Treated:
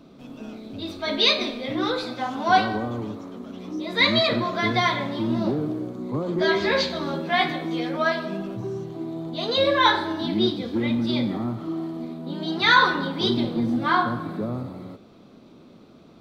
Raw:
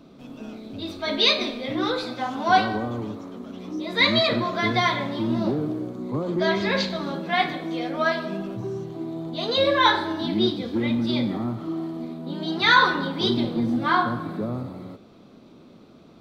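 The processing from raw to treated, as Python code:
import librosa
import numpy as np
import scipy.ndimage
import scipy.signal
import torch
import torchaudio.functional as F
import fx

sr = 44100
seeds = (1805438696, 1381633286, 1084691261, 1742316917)

y = fx.doubler(x, sr, ms=13.0, db=-3.5, at=(6.37, 7.97))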